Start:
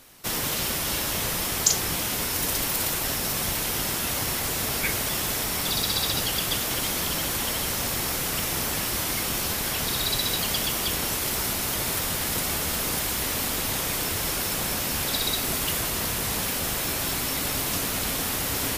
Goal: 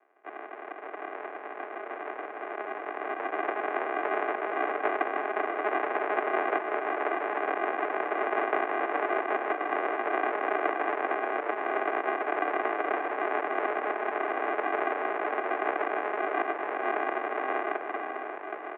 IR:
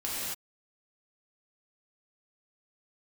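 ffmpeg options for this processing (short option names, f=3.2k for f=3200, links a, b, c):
-filter_complex "[0:a]dynaudnorm=f=150:g=17:m=13.5dB,aresample=8000,acrusher=samples=19:mix=1:aa=0.000001,aresample=44100,asplit=2[a][b];[b]adelay=583.1,volume=-9dB,highshelf=f=4k:g=-13.1[c];[a][c]amix=inputs=2:normalize=0,highpass=f=340:t=q:w=0.5412,highpass=f=340:t=q:w=1.307,lowpass=f=2.1k:t=q:w=0.5176,lowpass=f=2.1k:t=q:w=0.7071,lowpass=f=2.1k:t=q:w=1.932,afreqshift=99"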